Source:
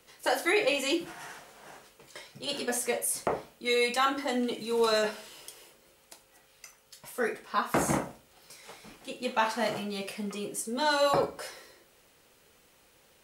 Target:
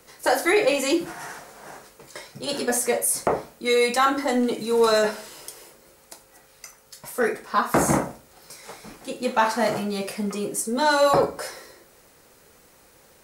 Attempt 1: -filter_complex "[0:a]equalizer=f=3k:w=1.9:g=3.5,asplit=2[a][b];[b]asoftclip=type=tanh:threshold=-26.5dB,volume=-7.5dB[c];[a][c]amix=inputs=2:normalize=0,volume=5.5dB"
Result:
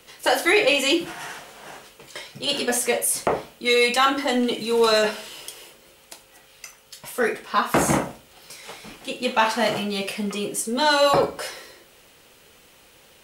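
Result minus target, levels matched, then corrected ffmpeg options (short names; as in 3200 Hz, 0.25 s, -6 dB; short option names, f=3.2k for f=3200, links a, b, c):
4000 Hz band +5.5 dB
-filter_complex "[0:a]equalizer=f=3k:w=1.9:g=-8,asplit=2[a][b];[b]asoftclip=type=tanh:threshold=-26.5dB,volume=-7.5dB[c];[a][c]amix=inputs=2:normalize=0,volume=5.5dB"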